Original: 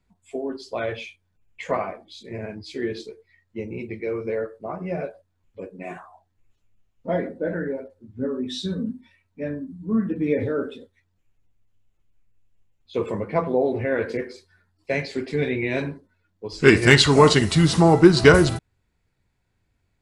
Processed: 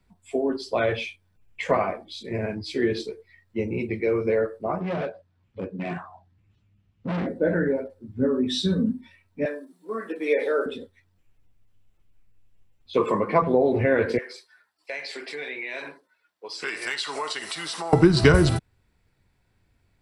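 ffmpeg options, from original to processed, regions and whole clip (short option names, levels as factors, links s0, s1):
-filter_complex "[0:a]asettb=1/sr,asplit=3[s0][s1][s2];[s0]atrim=end=4.804[s3];[s1]atrim=start=4.8:end=7.27,asetpts=PTS-STARTPTS,afade=t=in:d=0.004:c=qsin,afade=t=out:st=2.466:d=0.004:c=qsin,asubboost=boost=9:cutoff=210,volume=29.9,asoftclip=hard,volume=0.0335,highpass=110,lowpass=4700[s4];[s2]atrim=start=7.266[s5];[s3][s4]acrossfade=d=0.004:c1=hsin:c2=qsin[s6];[s6][s5]acrossfade=d=0.004:c1=qsin:c2=hsin,asettb=1/sr,asplit=3[s7][s8][s9];[s7]atrim=end=9.454[s10];[s8]atrim=start=9.45:end=10.66,asetpts=PTS-STARTPTS,afade=t=in:d=0.004:c=qsin,afade=t=out:st=1.206:d=0.004:c=qsin,highpass=f=430:w=0.5412,highpass=f=430:w=1.3066,highshelf=f=3800:g=10[s11];[s9]atrim=start=10.656[s12];[s10][s11]acrossfade=d=0.004:c1=hsin:c2=qsin[s13];[s13][s12]acrossfade=d=0.004:c1=qsin:c2=hsin,asettb=1/sr,asplit=3[s14][s15][s16];[s14]atrim=end=12.974[s17];[s15]atrim=start=12.97:end=13.42,asetpts=PTS-STARTPTS,afade=t=in:d=0.004:c=qsin,afade=t=out:st=0.446:d=0.004:c=qsin,highpass=180,equalizer=f=1100:w=6.2:g=13.5,acompressor=mode=upward:threshold=0.0355:ratio=2.5:attack=3.2:release=140:knee=2.83:detection=peak[s18];[s16]atrim=start=13.416[s19];[s17][s18]acrossfade=d=0.004:c1=hsin:c2=qsin[s20];[s20][s19]acrossfade=d=0.004:c1=qsin:c2=hsin,asettb=1/sr,asplit=3[s21][s22][s23];[s21]atrim=end=14.184[s24];[s22]atrim=start=14.18:end=17.93,asetpts=PTS-STARTPTS,afade=t=in:d=0.004:c=qsin,afade=t=out:st=3.746:d=0.004:c=qsin,highpass=780,acompressor=threshold=0.0158:ratio=3:attack=3.2:release=140:knee=1:detection=peak[s25];[s23]atrim=start=17.926[s26];[s24][s25]acrossfade=d=0.004:c1=hsin:c2=qsin[s27];[s27][s26]acrossfade=d=0.004:c1=qsin:c2=hsin,bandreject=f=6700:w=8.7,acrossover=split=130[s28][s29];[s29]acompressor=threshold=0.0891:ratio=3[s30];[s28][s30]amix=inputs=2:normalize=0,volume=1.68"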